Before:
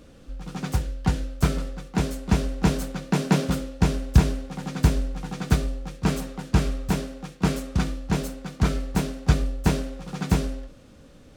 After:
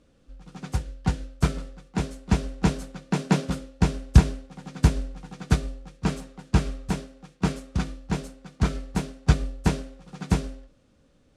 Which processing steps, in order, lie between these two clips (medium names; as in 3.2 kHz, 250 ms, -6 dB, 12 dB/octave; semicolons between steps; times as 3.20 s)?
low-pass 11 kHz 24 dB/octave; upward expansion 1.5:1, over -38 dBFS; trim +2.5 dB